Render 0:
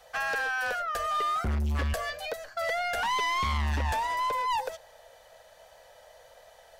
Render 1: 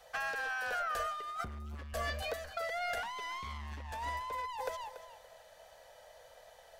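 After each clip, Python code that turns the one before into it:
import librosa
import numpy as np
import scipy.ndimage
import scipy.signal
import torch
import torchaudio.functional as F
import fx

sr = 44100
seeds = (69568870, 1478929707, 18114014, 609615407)

y = fx.echo_feedback(x, sr, ms=285, feedback_pct=23, wet_db=-12.5)
y = fx.over_compress(y, sr, threshold_db=-31.0, ratio=-0.5)
y = y * librosa.db_to_amplitude(-6.5)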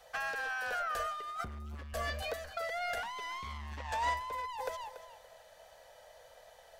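y = fx.spec_box(x, sr, start_s=3.78, length_s=0.36, low_hz=450.0, high_hz=8700.0, gain_db=7)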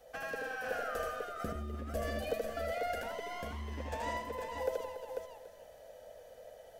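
y = fx.graphic_eq(x, sr, hz=(250, 500, 1000, 2000, 4000, 8000), db=(9, 6, -10, -4, -7, -4))
y = fx.echo_multitap(y, sr, ms=(79, 169, 351, 494), db=(-3.0, -13.5, -17.0, -5.0))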